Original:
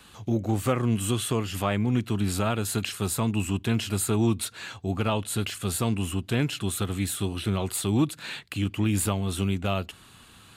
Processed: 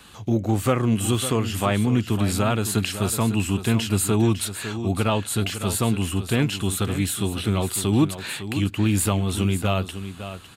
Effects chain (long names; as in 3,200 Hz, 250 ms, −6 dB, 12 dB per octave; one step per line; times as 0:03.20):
single-tap delay 554 ms −11 dB
level +4 dB